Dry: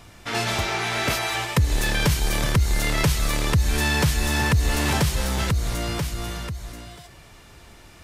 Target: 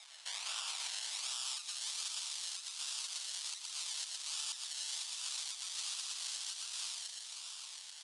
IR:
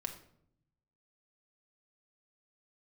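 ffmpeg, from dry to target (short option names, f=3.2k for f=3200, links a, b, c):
-filter_complex "[0:a]flanger=delay=8.9:depth=2.3:regen=41:speed=1.1:shape=triangular,acrusher=samples=29:mix=1:aa=0.000001:lfo=1:lforange=17.4:lforate=1.3,asplit=2[a][b];[b]aecho=0:1:116|162|531:0.596|0.266|0.237[c];[a][c]amix=inputs=2:normalize=0,acompressor=threshold=-32dB:ratio=3,highshelf=f=2.5k:t=q:w=1.5:g=9,acrossover=split=3700[d][e];[d]highpass=f=1.1k:w=0.5412,highpass=f=1.1k:w=1.3066[f];[e]dynaudnorm=f=340:g=7:m=10dB[g];[f][g]amix=inputs=2:normalize=0,aresample=22050,aresample=44100,alimiter=level_in=3.5dB:limit=-24dB:level=0:latency=1:release=482,volume=-3.5dB"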